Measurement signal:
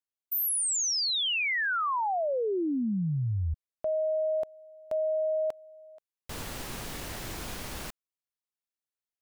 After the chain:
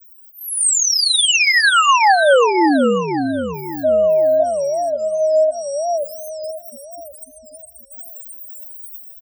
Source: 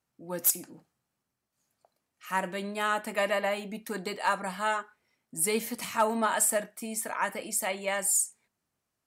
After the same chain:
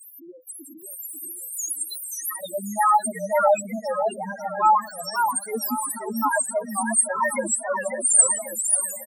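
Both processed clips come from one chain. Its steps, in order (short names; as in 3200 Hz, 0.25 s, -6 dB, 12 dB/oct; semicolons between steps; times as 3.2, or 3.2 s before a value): switching spikes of -28 dBFS; AGC gain up to 10 dB; comb 3.7 ms, depth 45%; auto swell 0.404 s; dynamic EQ 8600 Hz, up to +4 dB, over -41 dBFS, Q 4.7; gate with hold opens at -26 dBFS, hold 71 ms; high shelf 4700 Hz +2 dB; on a send: feedback echo 0.591 s, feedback 28%, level -19 dB; on the sum: loudest bins only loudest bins 2; HPF 340 Hz 12 dB/oct; warbling echo 0.538 s, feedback 40%, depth 194 cents, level -5.5 dB; gain +6.5 dB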